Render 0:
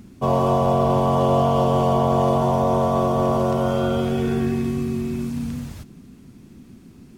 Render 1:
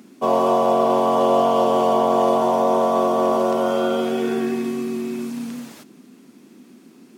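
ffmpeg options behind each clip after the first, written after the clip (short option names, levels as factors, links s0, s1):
-af "highpass=f=240:w=0.5412,highpass=f=240:w=1.3066,volume=1.33"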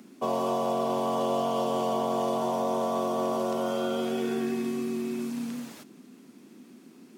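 -filter_complex "[0:a]acrossover=split=200|3000[s0][s1][s2];[s1]acompressor=threshold=0.0447:ratio=2[s3];[s0][s3][s2]amix=inputs=3:normalize=0,volume=0.631"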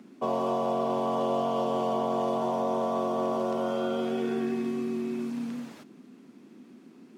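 -af "lowpass=f=2800:p=1"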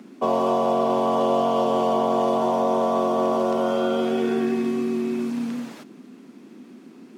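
-af "highpass=150,volume=2.24"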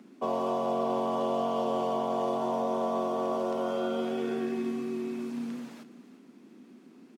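-af "aecho=1:1:345:0.168,volume=0.376"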